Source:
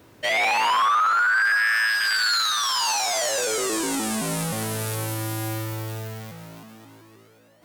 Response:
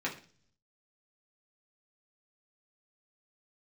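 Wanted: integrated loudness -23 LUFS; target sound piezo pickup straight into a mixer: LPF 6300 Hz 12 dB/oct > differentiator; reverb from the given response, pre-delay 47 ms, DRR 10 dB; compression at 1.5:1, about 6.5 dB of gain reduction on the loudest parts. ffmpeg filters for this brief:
-filter_complex "[0:a]acompressor=threshold=-37dB:ratio=1.5,asplit=2[a][b];[1:a]atrim=start_sample=2205,adelay=47[c];[b][c]afir=irnorm=-1:irlink=0,volume=-15.5dB[d];[a][d]amix=inputs=2:normalize=0,lowpass=6.3k,aderivative,volume=13.5dB"

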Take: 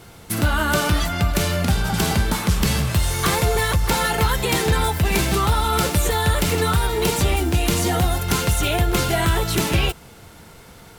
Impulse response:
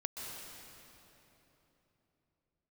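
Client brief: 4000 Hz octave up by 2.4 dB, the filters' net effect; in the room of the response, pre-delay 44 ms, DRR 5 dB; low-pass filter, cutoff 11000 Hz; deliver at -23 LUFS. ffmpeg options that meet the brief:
-filter_complex "[0:a]lowpass=11k,equalizer=f=4k:t=o:g=3,asplit=2[a][b];[1:a]atrim=start_sample=2205,adelay=44[c];[b][c]afir=irnorm=-1:irlink=0,volume=-5.5dB[d];[a][d]amix=inputs=2:normalize=0,volume=-4.5dB"

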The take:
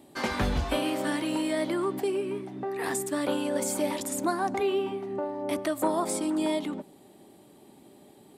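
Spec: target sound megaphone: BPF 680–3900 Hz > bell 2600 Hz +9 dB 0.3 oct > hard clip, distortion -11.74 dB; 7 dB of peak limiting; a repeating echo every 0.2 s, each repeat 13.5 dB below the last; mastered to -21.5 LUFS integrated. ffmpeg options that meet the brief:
-af "alimiter=limit=-22.5dB:level=0:latency=1,highpass=680,lowpass=3.9k,equalizer=f=2.6k:t=o:w=0.3:g=9,aecho=1:1:200|400:0.211|0.0444,asoftclip=type=hard:threshold=-34dB,volume=17dB"

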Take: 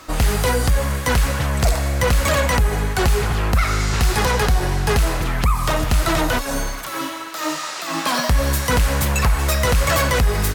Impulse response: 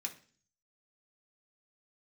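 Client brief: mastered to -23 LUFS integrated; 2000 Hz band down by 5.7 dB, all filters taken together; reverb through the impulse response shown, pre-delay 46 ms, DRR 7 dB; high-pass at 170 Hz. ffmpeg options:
-filter_complex "[0:a]highpass=170,equalizer=f=2k:t=o:g=-7.5,asplit=2[a][b];[1:a]atrim=start_sample=2205,adelay=46[c];[b][c]afir=irnorm=-1:irlink=0,volume=-6dB[d];[a][d]amix=inputs=2:normalize=0"

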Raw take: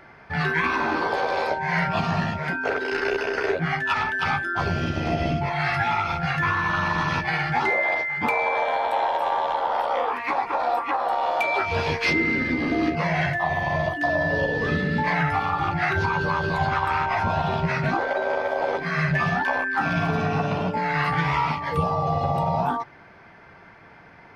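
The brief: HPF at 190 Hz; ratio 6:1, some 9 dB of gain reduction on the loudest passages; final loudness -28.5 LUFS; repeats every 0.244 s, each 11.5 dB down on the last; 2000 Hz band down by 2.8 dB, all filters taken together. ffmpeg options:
-af "highpass=190,equalizer=f=2k:t=o:g=-3.5,acompressor=threshold=-30dB:ratio=6,aecho=1:1:244|488|732:0.266|0.0718|0.0194,volume=4dB"

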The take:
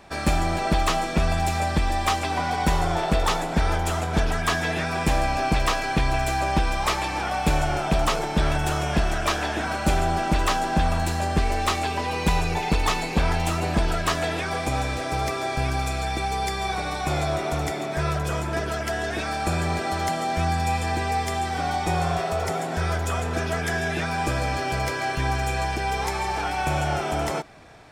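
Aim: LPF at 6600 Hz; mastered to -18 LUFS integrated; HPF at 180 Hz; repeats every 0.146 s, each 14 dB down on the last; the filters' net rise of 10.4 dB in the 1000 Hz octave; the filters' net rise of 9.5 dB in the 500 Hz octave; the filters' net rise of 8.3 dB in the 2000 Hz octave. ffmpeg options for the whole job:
-af "highpass=180,lowpass=6.6k,equalizer=f=500:t=o:g=9,equalizer=f=1k:t=o:g=9,equalizer=f=2k:t=o:g=7,aecho=1:1:146|292:0.2|0.0399,volume=-0.5dB"

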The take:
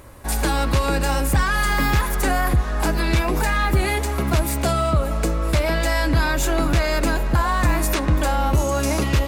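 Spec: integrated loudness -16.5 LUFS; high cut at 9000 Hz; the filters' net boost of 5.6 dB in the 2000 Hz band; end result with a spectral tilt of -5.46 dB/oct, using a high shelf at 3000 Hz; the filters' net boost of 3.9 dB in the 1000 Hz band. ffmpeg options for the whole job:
-af "lowpass=9k,equalizer=f=1k:t=o:g=3.5,equalizer=f=2k:t=o:g=7.5,highshelf=f=3k:g=-5,volume=2.5dB"

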